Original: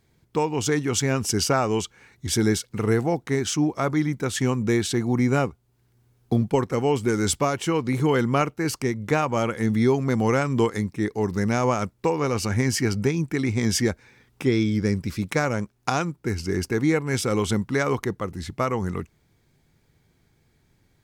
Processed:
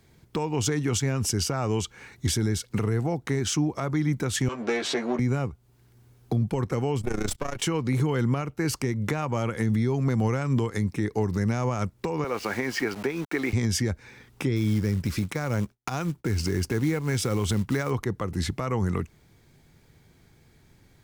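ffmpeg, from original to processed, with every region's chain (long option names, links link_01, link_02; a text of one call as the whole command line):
ffmpeg -i in.wav -filter_complex "[0:a]asettb=1/sr,asplit=3[link_01][link_02][link_03];[link_01]atrim=end=4.484[link_04];[link_02]atrim=start=4.48:end=5.19,asetpts=PTS-STARTPTS,afade=type=in:duration=0.004:curve=qsin,afade=type=out:start_time=0.706:duration=0.004:curve=qsin,aeval=exprs='if(lt(val(0),0),0.251*val(0),val(0))':channel_layout=same,highpass=370,lowpass=5100,asplit=2[link_05][link_06];[link_06]adelay=13,volume=-3.5dB[link_07];[link_05][link_07]amix=inputs=2:normalize=0,atrim=end_sample=31311[link_08];[link_03]atrim=start=5.186[link_09];[link_04][link_08]acrossfade=duration=0.004:curve1=hsin:curve2=qsin[link_10];[link_10][link_09]acrossfade=duration=0.004:curve1=qsin:curve2=hsin,asettb=1/sr,asplit=3[link_11][link_12][link_13];[link_11]atrim=end=7.014[link_14];[link_12]atrim=start=7.01:end=7.62,asetpts=PTS-STARTPTS,afade=type=in:duration=0.004:curve=qsin,afade=type=out:start_time=0.606:duration=0.004:curve=qsin,aeval=exprs='if(lt(val(0),0),0.251*val(0),val(0))':channel_layout=same,tremolo=f=29:d=0.824[link_15];[link_13]atrim=start=7.616[link_16];[link_14][link_15]acrossfade=duration=0.004:curve1=hsin:curve2=qsin[link_17];[link_17][link_16]acrossfade=duration=0.004:curve1=qsin:curve2=hsin,asettb=1/sr,asplit=3[link_18][link_19][link_20];[link_18]atrim=end=12.244[link_21];[link_19]atrim=start=12.24:end=13.53,asetpts=PTS-STARTPTS,afade=type=in:duration=0.004:curve=qsin,afade=type=out:start_time=1.286:duration=0.004:curve=qsin,highpass=390,lowpass=2900,aeval=exprs='val(0)*gte(abs(val(0)),0.00944)':channel_layout=same[link_22];[link_20]atrim=start=13.526[link_23];[link_21][link_22]acrossfade=duration=0.004:curve1=hsin:curve2=qsin[link_24];[link_24][link_23]acrossfade=duration=0.004:curve1=qsin:curve2=hsin,asettb=1/sr,asplit=3[link_25][link_26][link_27];[link_25]atrim=end=14.564[link_28];[link_26]atrim=start=14.56:end=17.91,asetpts=PTS-STARTPTS,afade=type=in:duration=0.004:curve=qsin,afade=type=out:start_time=3.346:duration=0.004:curve=qsin,agate=range=-33dB:threshold=-51dB:ratio=3:release=100:detection=peak,acrusher=bits=5:mode=log:mix=0:aa=0.000001[link_29];[link_27]atrim=start=17.906[link_30];[link_28][link_29]acrossfade=duration=0.004:curve1=hsin:curve2=qsin[link_31];[link_31][link_30]acrossfade=duration=0.004:curve1=qsin:curve2=hsin,acrossover=split=130[link_32][link_33];[link_33]acompressor=threshold=-29dB:ratio=6[link_34];[link_32][link_34]amix=inputs=2:normalize=0,alimiter=limit=-22dB:level=0:latency=1:release=102,volume=6dB" out.wav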